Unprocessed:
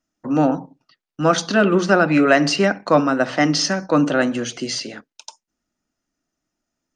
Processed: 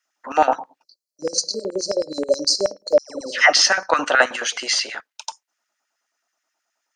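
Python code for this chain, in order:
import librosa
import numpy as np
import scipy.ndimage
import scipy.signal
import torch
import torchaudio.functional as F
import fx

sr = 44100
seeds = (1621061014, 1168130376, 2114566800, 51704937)

y = fx.spec_erase(x, sr, start_s=0.83, length_s=2.49, low_hz=620.0, high_hz=4000.0)
y = fx.filter_lfo_highpass(y, sr, shape='square', hz=9.4, low_hz=800.0, high_hz=1700.0, q=1.8)
y = fx.dispersion(y, sr, late='lows', ms=124.0, hz=1200.0, at=(2.98, 3.53))
y = y * 10.0 ** (5.0 / 20.0)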